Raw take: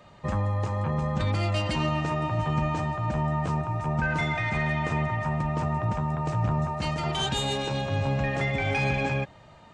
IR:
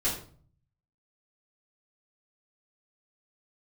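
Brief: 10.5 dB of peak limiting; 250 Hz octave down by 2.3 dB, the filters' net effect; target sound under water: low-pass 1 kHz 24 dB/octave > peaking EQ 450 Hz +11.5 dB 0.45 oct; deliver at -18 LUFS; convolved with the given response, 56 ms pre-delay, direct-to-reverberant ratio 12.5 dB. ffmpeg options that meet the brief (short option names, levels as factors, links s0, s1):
-filter_complex "[0:a]equalizer=f=250:t=o:g=-5.5,alimiter=level_in=1.19:limit=0.0631:level=0:latency=1,volume=0.841,asplit=2[s0][s1];[1:a]atrim=start_sample=2205,adelay=56[s2];[s1][s2]afir=irnorm=-1:irlink=0,volume=0.0944[s3];[s0][s3]amix=inputs=2:normalize=0,lowpass=f=1000:w=0.5412,lowpass=f=1000:w=1.3066,equalizer=f=450:t=o:w=0.45:g=11.5,volume=5.96"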